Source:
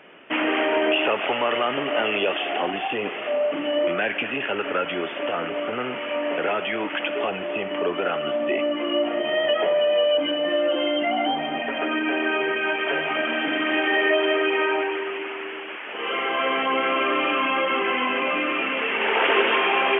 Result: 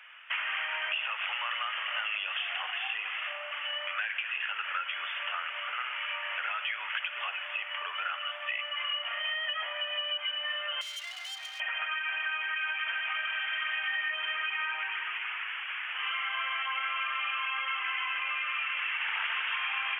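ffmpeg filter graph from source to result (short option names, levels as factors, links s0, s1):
-filter_complex "[0:a]asettb=1/sr,asplit=3[s0][s1][s2];[s0]atrim=end=8.424[s3];[s1]atrim=start=8.42:end=9.34,asetpts=PTS-STARTPTS,afade=t=in:d=0.004:c=qsin,afade=t=out:st=0.916:d=0.004:c=qsin,lowpass=f=2800:p=1,highshelf=f=2100:g=9[s4];[s2]atrim=start=9.336[s5];[s3][s4]acrossfade=d=0.004:c1=hsin:c2=qsin[s6];[s6][s5]acrossfade=d=0.004:c1=qsin:c2=hsin,asettb=1/sr,asplit=3[s7][s8][s9];[s7]atrim=end=10.814[s10];[s8]atrim=start=10.81:end=11.6,asetpts=PTS-STARTPTS,afade=t=in:d=0.004:c=qsin,afade=t=out:st=0.786:d=0.004:c=qsin,acrossover=split=190|3000[s11][s12][s13];[s12]acompressor=threshold=0.00794:ratio=2:attack=3.2:release=140:knee=2.83:detection=peak[s14];[s11][s14][s13]amix=inputs=3:normalize=0,volume=53.1,asoftclip=hard,volume=0.0188[s15];[s9]atrim=start=11.596[s16];[s10][s15]acrossfade=d=0.004:c1=hsin:c2=qsin[s17];[s17][s16]acrossfade=d=0.004:c1=qsin:c2=hsin,highpass=f=1200:w=0.5412,highpass=f=1200:w=1.3066,acompressor=threshold=0.0316:ratio=5"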